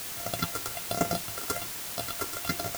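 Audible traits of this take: a buzz of ramps at a fixed pitch in blocks of 64 samples; phasing stages 6, 1.2 Hz, lowest notch 160–3800 Hz; a quantiser's noise floor 6-bit, dither triangular

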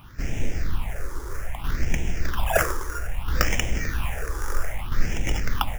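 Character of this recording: aliases and images of a low sample rate 4.2 kHz, jitter 0%; tremolo saw down 0.61 Hz, depth 55%; phasing stages 6, 0.62 Hz, lowest notch 180–1200 Hz

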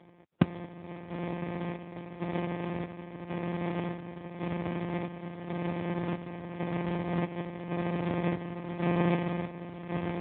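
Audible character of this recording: a buzz of ramps at a fixed pitch in blocks of 256 samples; chopped level 0.91 Hz, depth 60%, duty 60%; aliases and images of a low sample rate 1.4 kHz, jitter 0%; AMR-NB

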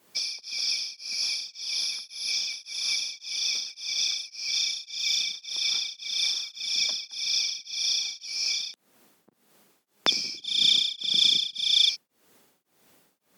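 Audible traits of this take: tremolo triangle 1.8 Hz, depth 100%; Opus

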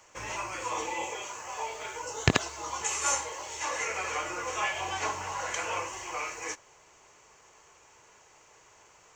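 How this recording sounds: noise floor -59 dBFS; spectral tilt -2.5 dB/octave

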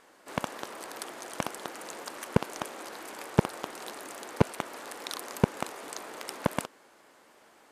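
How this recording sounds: noise floor -59 dBFS; spectral tilt -5.0 dB/octave

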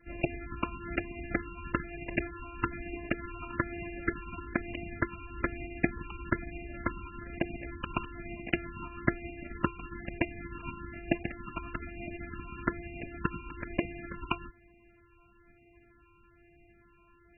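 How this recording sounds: a buzz of ramps at a fixed pitch in blocks of 128 samples; phasing stages 8, 1.1 Hz, lowest notch 560–1300 Hz; a quantiser's noise floor 12-bit, dither triangular; MP3

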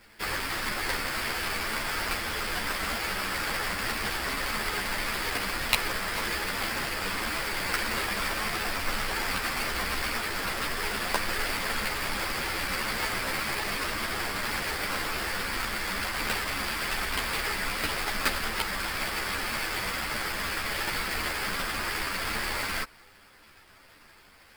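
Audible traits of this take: aliases and images of a low sample rate 6.7 kHz, jitter 20%; a shimmering, thickened sound

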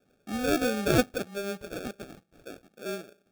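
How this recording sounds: phasing stages 6, 2.2 Hz, lowest notch 720–2600 Hz; aliases and images of a low sample rate 1 kHz, jitter 0%

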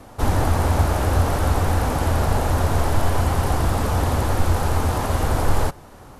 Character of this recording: noise floor -43 dBFS; spectral tilt -6.0 dB/octave

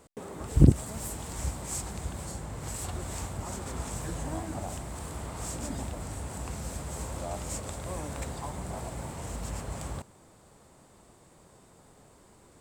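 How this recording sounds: noise floor -58 dBFS; spectral tilt -5.5 dB/octave

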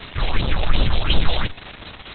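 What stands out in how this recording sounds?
phasing stages 4, 2.8 Hz, lowest notch 220–2100 Hz; a quantiser's noise floor 6-bit, dither triangular; Opus

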